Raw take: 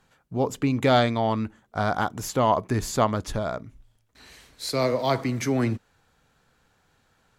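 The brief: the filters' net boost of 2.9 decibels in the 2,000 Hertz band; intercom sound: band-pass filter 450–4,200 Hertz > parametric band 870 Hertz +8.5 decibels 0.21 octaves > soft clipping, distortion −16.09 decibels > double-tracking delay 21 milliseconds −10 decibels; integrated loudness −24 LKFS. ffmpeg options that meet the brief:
ffmpeg -i in.wav -filter_complex "[0:a]highpass=450,lowpass=4200,equalizer=frequency=870:width_type=o:width=0.21:gain=8.5,equalizer=frequency=2000:width_type=o:gain=4,asoftclip=threshold=-11.5dB,asplit=2[link_01][link_02];[link_02]adelay=21,volume=-10dB[link_03];[link_01][link_03]amix=inputs=2:normalize=0,volume=2.5dB" out.wav

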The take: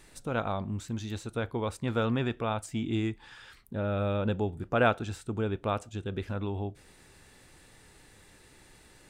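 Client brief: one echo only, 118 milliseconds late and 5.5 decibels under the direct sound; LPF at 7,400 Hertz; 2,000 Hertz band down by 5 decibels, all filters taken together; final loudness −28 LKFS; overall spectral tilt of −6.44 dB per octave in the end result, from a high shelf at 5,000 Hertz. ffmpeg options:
ffmpeg -i in.wav -af "lowpass=7400,equalizer=frequency=2000:width_type=o:gain=-8.5,highshelf=frequency=5000:gain=4.5,aecho=1:1:118:0.531,volume=3.5dB" out.wav

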